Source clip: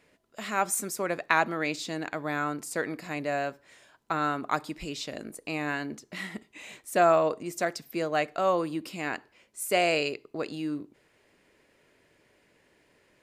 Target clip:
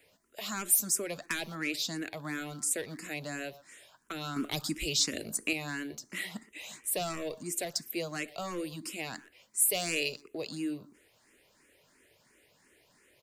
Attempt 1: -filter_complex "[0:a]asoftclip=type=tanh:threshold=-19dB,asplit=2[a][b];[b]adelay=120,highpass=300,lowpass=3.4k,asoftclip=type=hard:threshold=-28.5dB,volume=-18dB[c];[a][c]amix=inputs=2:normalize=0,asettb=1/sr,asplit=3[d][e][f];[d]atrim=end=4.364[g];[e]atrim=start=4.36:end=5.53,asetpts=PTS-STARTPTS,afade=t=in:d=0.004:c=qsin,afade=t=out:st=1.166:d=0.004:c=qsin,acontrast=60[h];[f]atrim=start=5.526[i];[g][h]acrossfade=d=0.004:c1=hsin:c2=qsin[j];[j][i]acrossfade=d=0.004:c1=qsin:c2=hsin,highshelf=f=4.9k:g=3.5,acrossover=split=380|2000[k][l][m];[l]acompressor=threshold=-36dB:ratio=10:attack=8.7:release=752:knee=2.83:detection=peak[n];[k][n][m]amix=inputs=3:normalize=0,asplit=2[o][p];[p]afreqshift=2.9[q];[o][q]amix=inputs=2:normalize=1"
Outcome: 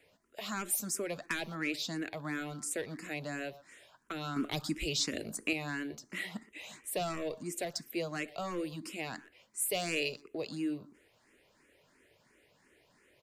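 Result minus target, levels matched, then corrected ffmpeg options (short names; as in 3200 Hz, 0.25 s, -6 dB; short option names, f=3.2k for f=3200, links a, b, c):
8000 Hz band -3.5 dB
-filter_complex "[0:a]asoftclip=type=tanh:threshold=-19dB,asplit=2[a][b];[b]adelay=120,highpass=300,lowpass=3.4k,asoftclip=type=hard:threshold=-28.5dB,volume=-18dB[c];[a][c]amix=inputs=2:normalize=0,asettb=1/sr,asplit=3[d][e][f];[d]atrim=end=4.364[g];[e]atrim=start=4.36:end=5.53,asetpts=PTS-STARTPTS,afade=t=in:d=0.004:c=qsin,afade=t=out:st=1.166:d=0.004:c=qsin,acontrast=60[h];[f]atrim=start=5.526[i];[g][h]acrossfade=d=0.004:c1=hsin:c2=qsin[j];[j][i]acrossfade=d=0.004:c1=qsin:c2=hsin,highshelf=f=4.9k:g=13,acrossover=split=380|2000[k][l][m];[l]acompressor=threshold=-36dB:ratio=10:attack=8.7:release=752:knee=2.83:detection=peak[n];[k][n][m]amix=inputs=3:normalize=0,asplit=2[o][p];[p]afreqshift=2.9[q];[o][q]amix=inputs=2:normalize=1"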